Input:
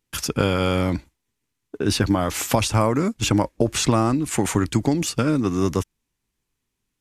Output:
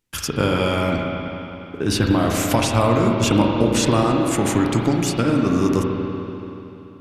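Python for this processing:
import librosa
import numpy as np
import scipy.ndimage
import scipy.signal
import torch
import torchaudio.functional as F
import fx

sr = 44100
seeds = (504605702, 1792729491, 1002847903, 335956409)

y = fx.rev_spring(x, sr, rt60_s=3.2, pass_ms=(34, 48), chirp_ms=60, drr_db=0.0)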